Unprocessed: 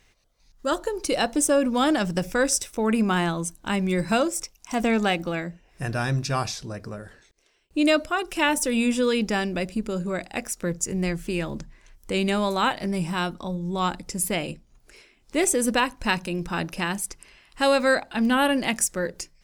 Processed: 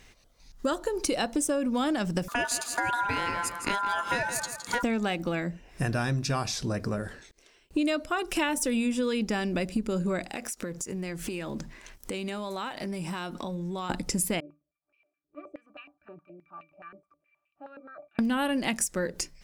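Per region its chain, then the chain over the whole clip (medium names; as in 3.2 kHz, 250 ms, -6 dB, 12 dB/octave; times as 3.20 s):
2.28–4.83 s: ring modulator 1.2 kHz + feedback delay 164 ms, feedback 25%, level -12 dB
10.30–13.90 s: bass shelf 150 Hz -10.5 dB + compression 8:1, threshold -41 dBFS + waveshaping leveller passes 1
14.40–18.19 s: pitch-class resonator D, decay 0.16 s + step-sequenced band-pass 9.5 Hz 420–2700 Hz
whole clip: peaking EQ 250 Hz +3 dB 0.77 oct; compression 6:1, threshold -31 dBFS; trim +5.5 dB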